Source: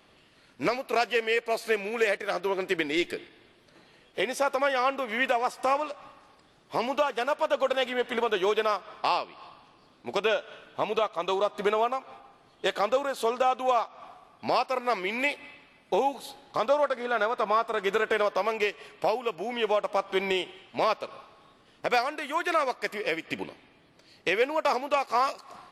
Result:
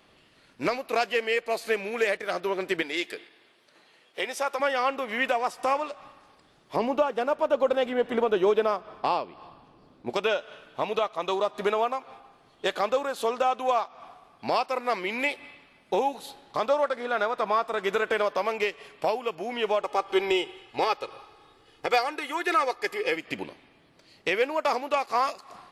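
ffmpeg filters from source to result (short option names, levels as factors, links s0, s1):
-filter_complex "[0:a]asettb=1/sr,asplit=3[s0][s1][s2];[s0]atrim=end=2.824[s3];[s1]atrim=start=2.82:end=4.6,asetpts=PTS-STARTPTS,afade=t=in:d=0.004:c=qsin,afade=t=out:st=1.776:d=0.004:c=qsin,highpass=f=600:p=1[s4];[s2]atrim=start=4.596[s5];[s3][s4]acrossfade=d=0.004:c1=hsin:c2=qsin[s6];[s6][s5]acrossfade=d=0.004:c1=qsin:c2=hsin,asettb=1/sr,asplit=3[s7][s8][s9];[s7]atrim=end=6.764[s10];[s8]atrim=start=6.76:end=10.1,asetpts=PTS-STARTPTS,afade=t=in:d=0.004:c=qsin,afade=t=out:st=3.336:d=0.004:c=qsin,tiltshelf=f=920:g=6.5[s11];[s9]atrim=start=10.096[s12];[s10][s11]acrossfade=d=0.004:c1=hsin:c2=qsin[s13];[s13][s12]acrossfade=d=0.004:c1=qsin:c2=hsin,asettb=1/sr,asplit=3[s14][s15][s16];[s14]atrim=end=19.814[s17];[s15]atrim=start=19.81:end=23.16,asetpts=PTS-STARTPTS,afade=t=in:d=0.004:c=qsin,afade=t=out:st=3.346:d=0.004:c=qsin,aecho=1:1:2.4:0.67,atrim=end_sample=147735[s18];[s16]atrim=start=23.156[s19];[s17][s18]acrossfade=d=0.004:c1=hsin:c2=qsin[s20];[s20][s19]acrossfade=d=0.004:c1=qsin:c2=hsin"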